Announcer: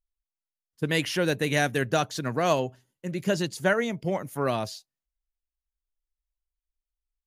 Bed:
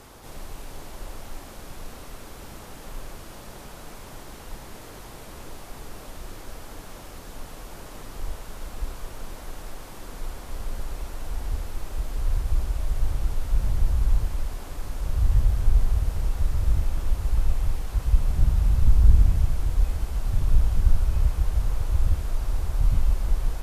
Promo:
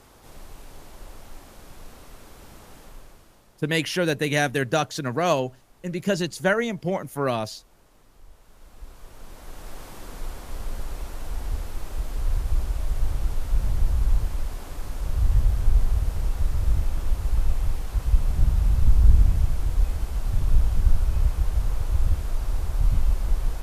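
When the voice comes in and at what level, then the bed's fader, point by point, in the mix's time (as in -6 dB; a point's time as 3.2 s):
2.80 s, +2.0 dB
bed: 2.78 s -5 dB
3.59 s -17.5 dB
8.29 s -17.5 dB
9.79 s 0 dB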